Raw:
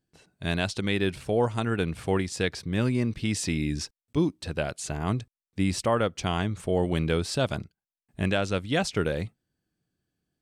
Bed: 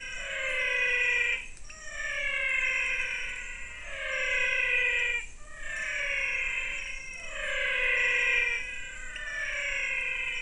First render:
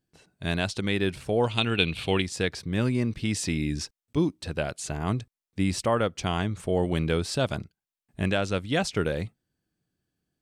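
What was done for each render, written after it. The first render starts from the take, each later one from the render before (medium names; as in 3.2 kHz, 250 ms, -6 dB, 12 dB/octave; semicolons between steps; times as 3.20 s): 1.44–2.22 s: high-order bell 3.2 kHz +14.5 dB 1.1 oct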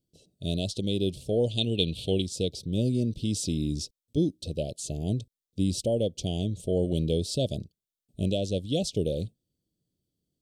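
elliptic band-stop 590–3300 Hz, stop band 60 dB; peaking EQ 1.2 kHz -2 dB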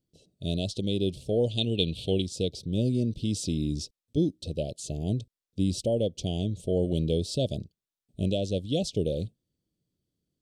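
treble shelf 8.8 kHz -7.5 dB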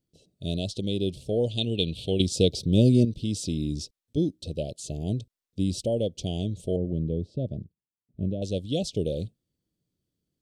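2.20–3.05 s: gain +7.5 dB; 6.76–8.42 s: band-pass filter 140 Hz, Q 0.51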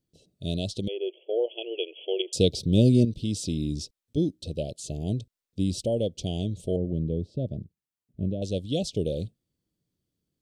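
0.88–2.33 s: brick-wall FIR band-pass 330–3400 Hz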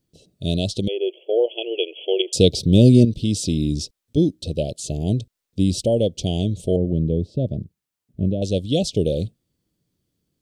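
trim +7.5 dB; peak limiter -2 dBFS, peak gain reduction 1.5 dB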